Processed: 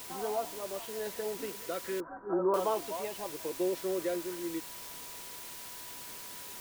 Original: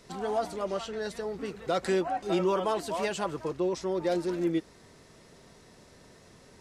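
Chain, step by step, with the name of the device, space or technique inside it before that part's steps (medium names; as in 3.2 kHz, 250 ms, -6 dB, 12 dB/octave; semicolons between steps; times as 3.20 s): shortwave radio (band-pass 290–2700 Hz; tremolo 0.79 Hz, depth 54%; LFO notch saw down 0.43 Hz 620–2300 Hz; whistle 980 Hz -55 dBFS; white noise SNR 9 dB); 2.00–2.54 s: Chebyshev low-pass 1.6 kHz, order 6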